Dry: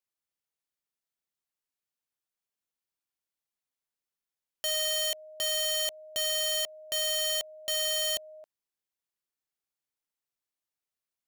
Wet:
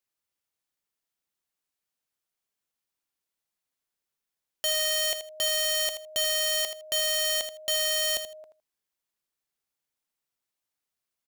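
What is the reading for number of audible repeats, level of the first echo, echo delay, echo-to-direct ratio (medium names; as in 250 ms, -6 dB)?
2, -10.0 dB, 80 ms, -10.0 dB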